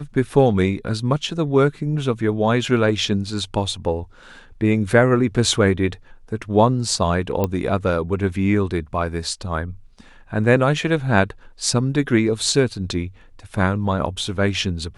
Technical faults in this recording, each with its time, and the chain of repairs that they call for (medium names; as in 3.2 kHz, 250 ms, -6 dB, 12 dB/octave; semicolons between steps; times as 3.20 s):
7.44 s: pop -8 dBFS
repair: de-click